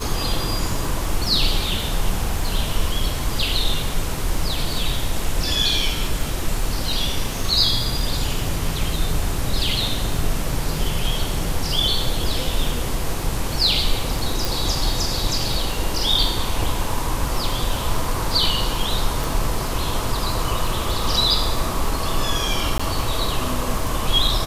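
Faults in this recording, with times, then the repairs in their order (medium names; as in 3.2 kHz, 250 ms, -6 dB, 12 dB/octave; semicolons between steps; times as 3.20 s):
crackle 26 per s -27 dBFS
14.45 s: pop
19.24 s: pop
22.78–22.80 s: dropout 15 ms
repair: de-click; interpolate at 22.78 s, 15 ms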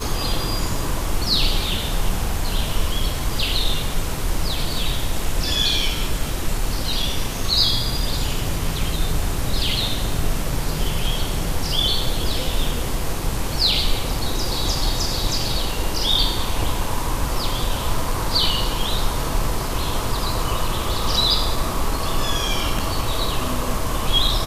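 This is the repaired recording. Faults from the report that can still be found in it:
14.45 s: pop
19.24 s: pop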